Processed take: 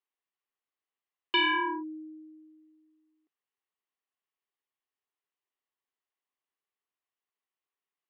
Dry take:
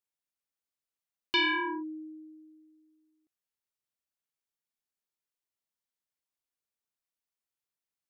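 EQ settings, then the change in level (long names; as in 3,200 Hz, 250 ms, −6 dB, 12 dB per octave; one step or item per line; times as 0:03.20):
loudspeaker in its box 270–3,800 Hz, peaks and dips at 280 Hz +5 dB, 400 Hz +9 dB, 770 Hz +6 dB, 1,100 Hz +10 dB, 1,900 Hz +7 dB, 2,900 Hz +6 dB
−3.5 dB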